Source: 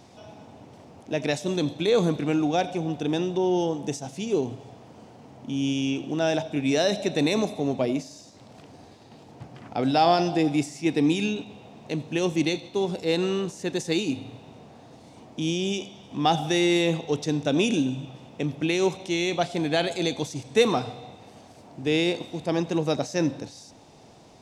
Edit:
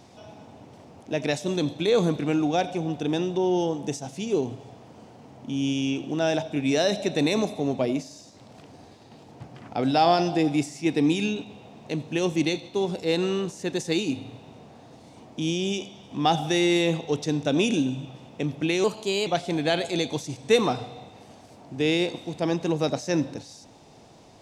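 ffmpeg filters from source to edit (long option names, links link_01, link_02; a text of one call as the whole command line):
ffmpeg -i in.wav -filter_complex "[0:a]asplit=3[link_01][link_02][link_03];[link_01]atrim=end=18.844[link_04];[link_02]atrim=start=18.84:end=19.33,asetpts=PTS-STARTPTS,asetrate=50715,aresample=44100,atrim=end_sample=18790,asetpts=PTS-STARTPTS[link_05];[link_03]atrim=start=19.326[link_06];[link_04][link_05]acrossfade=duration=0.004:curve1=hsin:curve2=hsin[link_07];[link_07][link_06]acrossfade=duration=0.004:curve1=hsin:curve2=hsin" out.wav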